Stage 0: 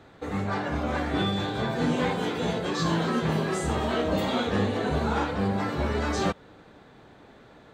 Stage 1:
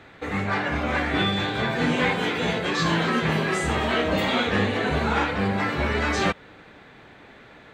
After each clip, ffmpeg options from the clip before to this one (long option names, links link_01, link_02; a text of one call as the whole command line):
ffmpeg -i in.wav -af "equalizer=frequency=2200:width_type=o:width=1.2:gain=10,volume=1.5dB" out.wav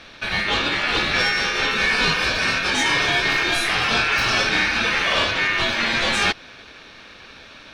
ffmpeg -i in.wav -af "asoftclip=type=tanh:threshold=-17.5dB,highpass=frequency=120:poles=1,aeval=exprs='val(0)*sin(2*PI*2000*n/s)':channel_layout=same,volume=8.5dB" out.wav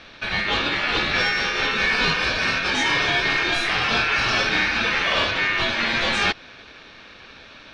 ffmpeg -i in.wav -af "lowpass=5700,volume=-1dB" out.wav